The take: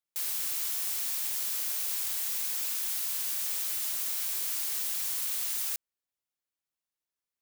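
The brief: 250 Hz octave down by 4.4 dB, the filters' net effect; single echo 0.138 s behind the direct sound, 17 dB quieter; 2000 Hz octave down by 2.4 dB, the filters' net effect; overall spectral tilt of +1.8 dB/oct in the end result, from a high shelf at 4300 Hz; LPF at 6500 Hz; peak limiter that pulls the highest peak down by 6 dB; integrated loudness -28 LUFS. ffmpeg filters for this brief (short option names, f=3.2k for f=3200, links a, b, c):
-af "lowpass=6.5k,equalizer=f=250:t=o:g=-6,equalizer=f=2k:t=o:g=-4,highshelf=f=4.3k:g=4,alimiter=level_in=8.5dB:limit=-24dB:level=0:latency=1,volume=-8.5dB,aecho=1:1:138:0.141,volume=11.5dB"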